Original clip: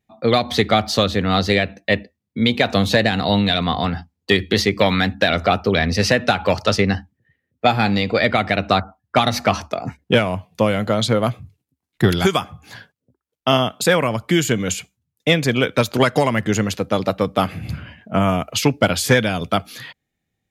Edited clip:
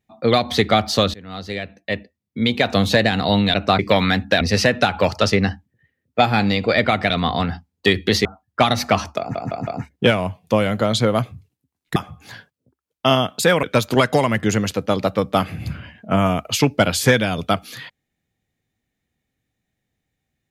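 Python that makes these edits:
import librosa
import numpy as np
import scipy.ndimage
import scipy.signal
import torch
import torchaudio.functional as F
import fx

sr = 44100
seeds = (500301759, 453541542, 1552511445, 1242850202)

y = fx.edit(x, sr, fx.fade_in_from(start_s=1.14, length_s=1.66, floor_db=-23.5),
    fx.swap(start_s=3.54, length_s=1.15, other_s=8.56, other_length_s=0.25),
    fx.cut(start_s=5.31, length_s=0.56),
    fx.stutter(start_s=9.75, slice_s=0.16, count=4),
    fx.cut(start_s=12.04, length_s=0.34),
    fx.cut(start_s=14.05, length_s=1.61), tone=tone)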